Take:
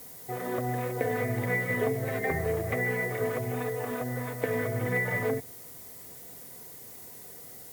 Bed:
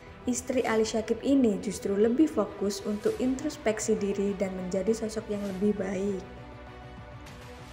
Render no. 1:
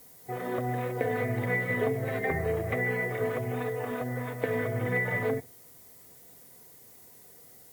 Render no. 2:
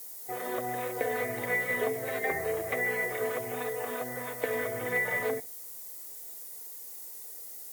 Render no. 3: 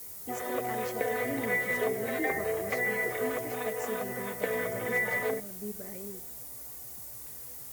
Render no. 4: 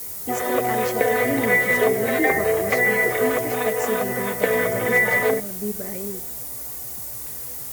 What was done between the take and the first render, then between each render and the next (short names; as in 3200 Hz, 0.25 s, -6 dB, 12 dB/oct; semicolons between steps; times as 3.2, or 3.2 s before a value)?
noise print and reduce 7 dB
tone controls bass -15 dB, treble +10 dB
add bed -13.5 dB
gain +11 dB